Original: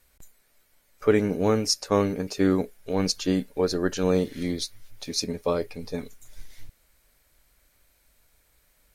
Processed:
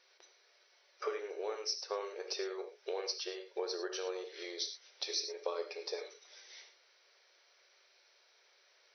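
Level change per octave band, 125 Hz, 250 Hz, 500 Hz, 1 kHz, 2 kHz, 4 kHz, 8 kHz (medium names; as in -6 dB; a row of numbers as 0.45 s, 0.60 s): under -40 dB, -25.0 dB, -13.5 dB, -12.0 dB, -10.5 dB, -7.5 dB, -11.0 dB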